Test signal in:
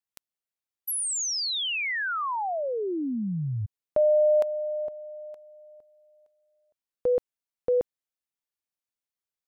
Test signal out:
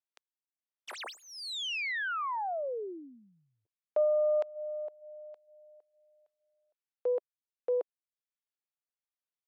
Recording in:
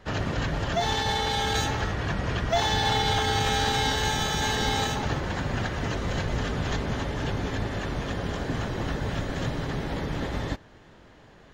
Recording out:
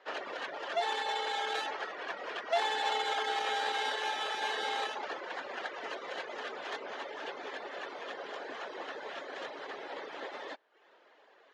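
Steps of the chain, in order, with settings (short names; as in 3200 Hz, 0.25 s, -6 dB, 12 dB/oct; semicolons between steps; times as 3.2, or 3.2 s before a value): tracing distortion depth 0.13 ms; LPF 4100 Hz 12 dB/oct; reverb removal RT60 0.6 s; HPF 420 Hz 24 dB/oct; gain -4.5 dB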